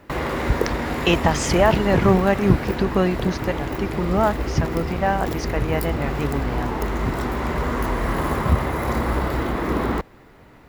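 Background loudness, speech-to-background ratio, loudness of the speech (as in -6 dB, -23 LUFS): -25.0 LUFS, 2.5 dB, -22.5 LUFS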